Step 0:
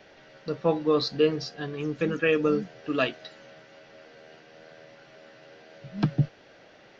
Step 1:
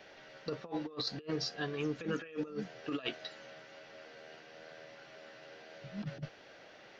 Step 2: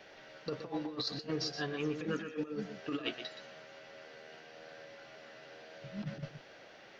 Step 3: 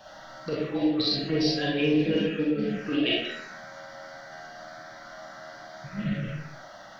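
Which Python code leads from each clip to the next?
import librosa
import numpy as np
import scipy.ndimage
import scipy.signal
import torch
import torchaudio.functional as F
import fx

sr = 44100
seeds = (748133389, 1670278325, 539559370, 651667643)

y1 = fx.low_shelf(x, sr, hz=390.0, db=-6.5)
y1 = fx.over_compress(y1, sr, threshold_db=-32.0, ratio=-0.5)
y1 = F.gain(torch.from_numpy(y1), -5.0).numpy()
y2 = y1 + 10.0 ** (-9.0 / 20.0) * np.pad(y1, (int(122 * sr / 1000.0), 0))[:len(y1)]
y3 = fx.env_phaser(y2, sr, low_hz=360.0, high_hz=1300.0, full_db=-33.5)
y3 = fx.rev_freeverb(y3, sr, rt60_s=0.49, hf_ratio=0.65, predelay_ms=5, drr_db=-4.5)
y3 = F.gain(torch.from_numpy(y3), 8.5).numpy()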